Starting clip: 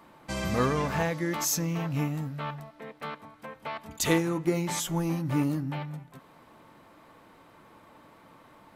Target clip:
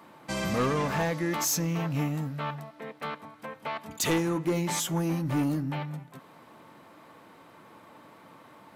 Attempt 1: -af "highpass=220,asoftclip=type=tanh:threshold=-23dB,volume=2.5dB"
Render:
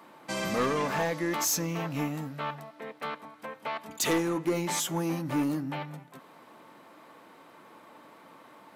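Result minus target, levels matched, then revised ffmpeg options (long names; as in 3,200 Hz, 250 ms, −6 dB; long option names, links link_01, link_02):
125 Hz band −5.0 dB
-af "highpass=110,asoftclip=type=tanh:threshold=-23dB,volume=2.5dB"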